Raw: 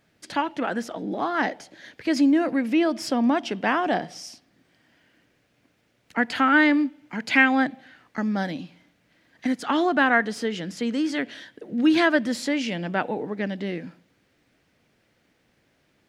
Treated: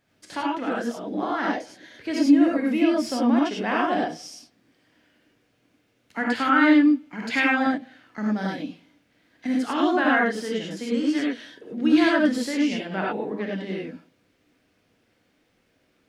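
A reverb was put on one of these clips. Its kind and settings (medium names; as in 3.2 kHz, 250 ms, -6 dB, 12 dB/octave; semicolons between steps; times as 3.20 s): gated-style reverb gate 120 ms rising, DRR -3 dB; trim -5.5 dB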